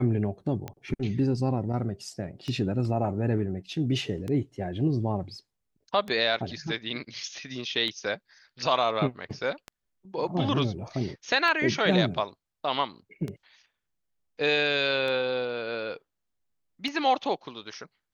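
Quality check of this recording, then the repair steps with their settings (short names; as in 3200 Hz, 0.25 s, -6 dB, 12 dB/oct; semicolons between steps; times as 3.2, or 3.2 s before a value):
tick 33 1/3 rpm -21 dBFS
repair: de-click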